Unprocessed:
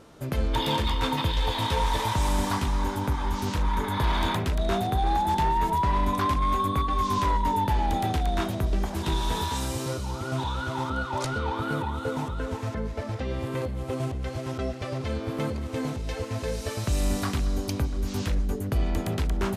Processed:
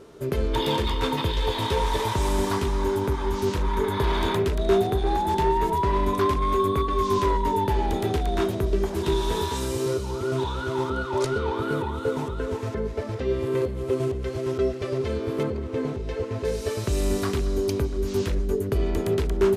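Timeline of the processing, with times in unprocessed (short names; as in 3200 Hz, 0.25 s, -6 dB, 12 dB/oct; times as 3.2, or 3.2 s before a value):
15.43–16.45 LPF 2500 Hz 6 dB/oct
whole clip: bell 400 Hz +15 dB 0.29 oct; notch 780 Hz, Q 17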